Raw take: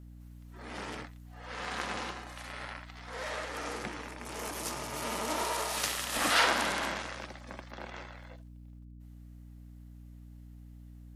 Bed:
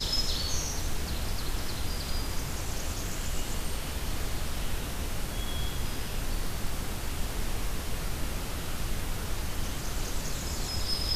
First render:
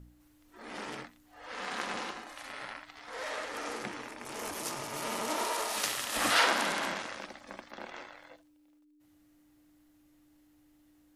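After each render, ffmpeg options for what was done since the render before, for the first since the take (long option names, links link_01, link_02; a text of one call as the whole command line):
ffmpeg -i in.wav -af "bandreject=frequency=60:width_type=h:width=4,bandreject=frequency=120:width_type=h:width=4,bandreject=frequency=180:width_type=h:width=4,bandreject=frequency=240:width_type=h:width=4" out.wav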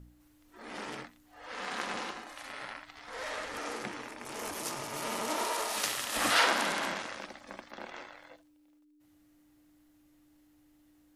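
ffmpeg -i in.wav -filter_complex "[0:a]asettb=1/sr,asplit=3[link_01][link_02][link_03];[link_01]atrim=end=2.724[link_04];[link_02]atrim=start=2.72:end=3.59,asetpts=PTS-STARTPTS,afade=type=in:duration=0.004:curve=qsin,afade=type=out:start_time=0.866:duration=0.004:curve=qsin,asubboost=boost=6.5:cutoff=230[link_05];[link_03]atrim=start=3.586[link_06];[link_04][link_05]acrossfade=duration=0.004:curve1=hsin:curve2=qsin[link_07];[link_07][link_06]acrossfade=duration=0.004:curve1=qsin:curve2=hsin" out.wav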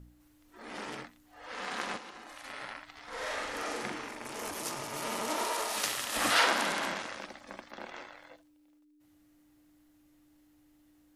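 ffmpeg -i in.wav -filter_complex "[0:a]asplit=3[link_01][link_02][link_03];[link_01]afade=type=out:start_time=1.96:duration=0.02[link_04];[link_02]acompressor=threshold=-43dB:ratio=6:attack=3.2:release=140:knee=1:detection=peak,afade=type=in:start_time=1.96:duration=0.02,afade=type=out:start_time=2.43:duration=0.02[link_05];[link_03]afade=type=in:start_time=2.43:duration=0.02[link_06];[link_04][link_05][link_06]amix=inputs=3:normalize=0,asettb=1/sr,asplit=3[link_07][link_08][link_09];[link_07]atrim=end=3.074[link_10];[link_08]atrim=start=3.07:end=4.27,asetpts=PTS-STARTPTS,afade=type=in:duration=0.004:curve=qsin,afade=type=out:start_time=1.196:duration=0.004:curve=qsin,asplit=2[link_11][link_12];[link_12]adelay=43,volume=-2dB[link_13];[link_11][link_13]amix=inputs=2:normalize=0,atrim=end_sample=52920[link_14];[link_09]atrim=start=4.266[link_15];[link_10][link_14]acrossfade=duration=0.004:curve1=hsin:curve2=qsin[link_16];[link_16][link_15]acrossfade=duration=0.004:curve1=qsin:curve2=hsin" out.wav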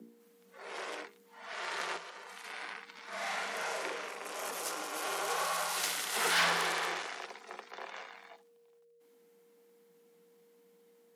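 ffmpeg -i in.wav -af "aeval=exprs='(tanh(12.6*val(0)+0.15)-tanh(0.15))/12.6':channel_layout=same,afreqshift=170" out.wav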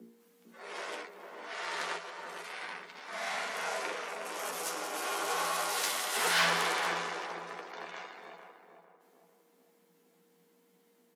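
ffmpeg -i in.wav -filter_complex "[0:a]asplit=2[link_01][link_02];[link_02]adelay=12,volume=-5.5dB[link_03];[link_01][link_03]amix=inputs=2:normalize=0,asplit=2[link_04][link_05];[link_05]adelay=450,lowpass=frequency=870:poles=1,volume=-4dB,asplit=2[link_06][link_07];[link_07]adelay=450,lowpass=frequency=870:poles=1,volume=0.51,asplit=2[link_08][link_09];[link_09]adelay=450,lowpass=frequency=870:poles=1,volume=0.51,asplit=2[link_10][link_11];[link_11]adelay=450,lowpass=frequency=870:poles=1,volume=0.51,asplit=2[link_12][link_13];[link_13]adelay=450,lowpass=frequency=870:poles=1,volume=0.51,asplit=2[link_14][link_15];[link_15]adelay=450,lowpass=frequency=870:poles=1,volume=0.51,asplit=2[link_16][link_17];[link_17]adelay=450,lowpass=frequency=870:poles=1,volume=0.51[link_18];[link_06][link_08][link_10][link_12][link_14][link_16][link_18]amix=inputs=7:normalize=0[link_19];[link_04][link_19]amix=inputs=2:normalize=0" out.wav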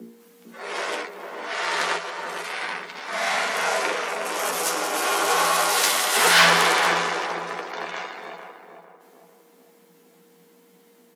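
ffmpeg -i in.wav -af "volume=12dB" out.wav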